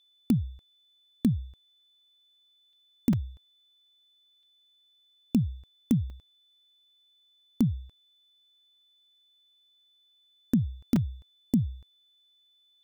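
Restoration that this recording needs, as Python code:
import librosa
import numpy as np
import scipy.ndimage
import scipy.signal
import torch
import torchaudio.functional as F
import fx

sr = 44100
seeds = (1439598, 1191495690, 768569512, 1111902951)

y = fx.notch(x, sr, hz=3500.0, q=30.0)
y = fx.fix_interpolate(y, sr, at_s=(2.73, 3.13, 4.43, 6.1, 10.96), length_ms=3.2)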